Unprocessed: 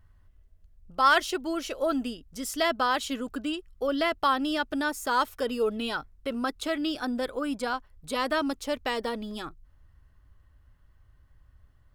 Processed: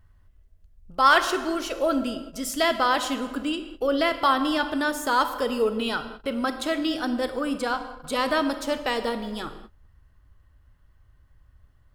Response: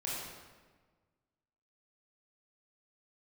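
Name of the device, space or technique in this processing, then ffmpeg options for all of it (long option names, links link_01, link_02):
keyed gated reverb: -filter_complex "[0:a]asplit=3[link_01][link_02][link_03];[1:a]atrim=start_sample=2205[link_04];[link_02][link_04]afir=irnorm=-1:irlink=0[link_05];[link_03]apad=whole_len=526678[link_06];[link_05][link_06]sidechaingate=range=-33dB:threshold=-50dB:ratio=16:detection=peak,volume=-9dB[link_07];[link_01][link_07]amix=inputs=2:normalize=0,volume=1.5dB"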